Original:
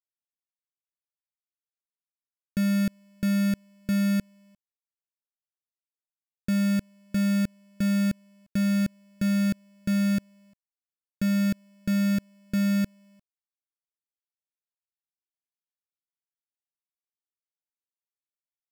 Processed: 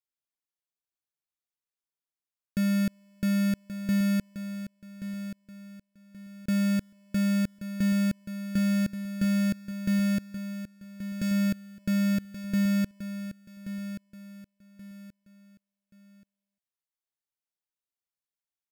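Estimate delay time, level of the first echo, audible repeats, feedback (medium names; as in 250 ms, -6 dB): 1129 ms, -11.0 dB, 3, 31%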